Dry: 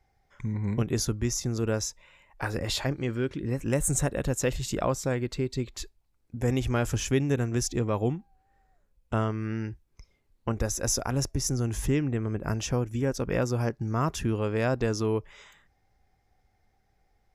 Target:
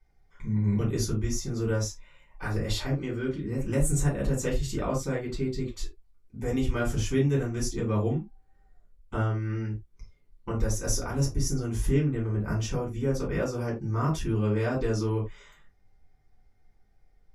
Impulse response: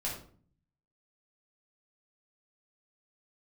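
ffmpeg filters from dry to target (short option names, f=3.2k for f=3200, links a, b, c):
-filter_complex "[1:a]atrim=start_sample=2205,afade=t=out:st=0.25:d=0.01,atrim=end_sample=11466,asetrate=88200,aresample=44100[a];[0:a][a]afir=irnorm=-1:irlink=0"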